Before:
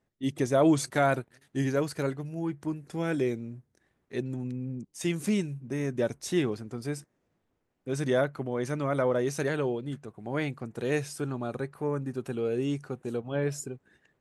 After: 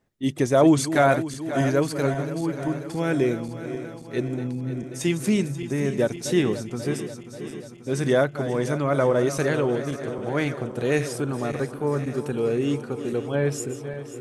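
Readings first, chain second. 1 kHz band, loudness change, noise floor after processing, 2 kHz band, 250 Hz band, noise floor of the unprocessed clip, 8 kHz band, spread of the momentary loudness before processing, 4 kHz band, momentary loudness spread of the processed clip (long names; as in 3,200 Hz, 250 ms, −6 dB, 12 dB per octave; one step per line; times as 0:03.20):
+6.5 dB, +6.0 dB, −40 dBFS, +6.0 dB, +6.0 dB, −77 dBFS, +6.0 dB, 11 LU, +6.0 dB, 11 LU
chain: feedback delay that plays each chunk backwards 268 ms, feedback 79%, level −12 dB
level +5.5 dB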